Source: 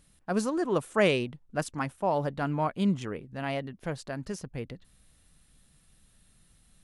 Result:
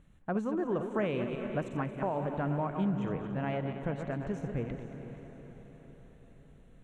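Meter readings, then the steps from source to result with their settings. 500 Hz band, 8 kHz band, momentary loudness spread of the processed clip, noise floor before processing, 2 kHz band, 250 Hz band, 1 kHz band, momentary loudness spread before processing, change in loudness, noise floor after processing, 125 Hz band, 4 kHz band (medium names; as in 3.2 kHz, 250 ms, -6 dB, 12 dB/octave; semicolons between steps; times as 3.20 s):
-4.0 dB, under -15 dB, 16 LU, -64 dBFS, -7.5 dB, -2.0 dB, -4.5 dB, 13 LU, -3.5 dB, -57 dBFS, -0.5 dB, -13.5 dB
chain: backward echo that repeats 113 ms, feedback 52%, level -9 dB; boxcar filter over 9 samples; compression 3:1, threshold -33 dBFS, peak gain reduction 11 dB; bass shelf 470 Hz +4 dB; on a send: echo that smears into a reverb 473 ms, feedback 54%, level -11 dB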